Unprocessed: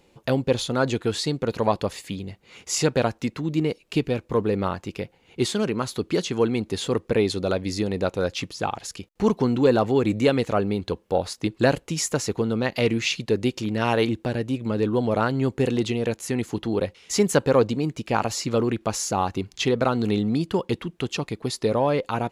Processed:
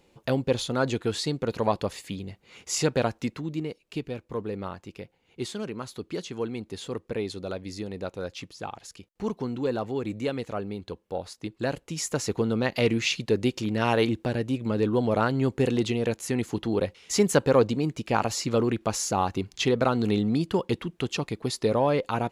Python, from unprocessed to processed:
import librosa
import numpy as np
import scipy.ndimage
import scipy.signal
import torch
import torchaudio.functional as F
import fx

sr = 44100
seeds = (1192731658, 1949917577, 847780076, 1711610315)

y = fx.gain(x, sr, db=fx.line((3.28, -3.0), (3.69, -9.5), (11.64, -9.5), (12.34, -1.5)))